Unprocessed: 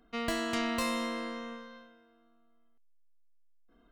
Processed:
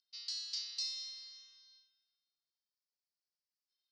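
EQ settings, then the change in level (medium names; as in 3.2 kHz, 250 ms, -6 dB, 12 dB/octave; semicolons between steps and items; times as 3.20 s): Butterworth band-pass 4.9 kHz, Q 3.8; +8.5 dB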